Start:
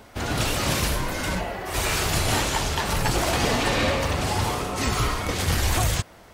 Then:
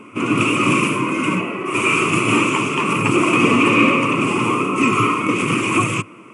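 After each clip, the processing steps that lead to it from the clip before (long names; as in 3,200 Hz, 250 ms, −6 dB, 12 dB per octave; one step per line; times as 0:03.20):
drawn EQ curve 130 Hz 0 dB, 320 Hz +13 dB, 790 Hz −13 dB, 1,100 Hz +10 dB, 1,700 Hz −12 dB, 2,500 Hz +14 dB, 4,000 Hz −20 dB, 7,700 Hz −3 dB
brick-wall band-pass 100–11,000 Hz
parametric band 1,300 Hz +5.5 dB 0.29 octaves
level +3.5 dB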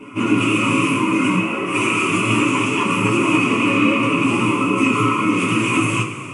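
downward compressor 2.5 to 1, threshold −20 dBFS, peak gain reduction 7.5 dB
flanger 1.2 Hz, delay 6.4 ms, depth 4.8 ms, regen −24%
coupled-rooms reverb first 0.23 s, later 3 s, from −18 dB, DRR −5.5 dB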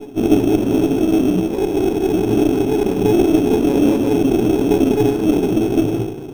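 low-pass with resonance 420 Hz, resonance Q 4.9
in parallel at −4.5 dB: decimation without filtering 15×
on the sum: windowed peak hold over 17 samples
level −6 dB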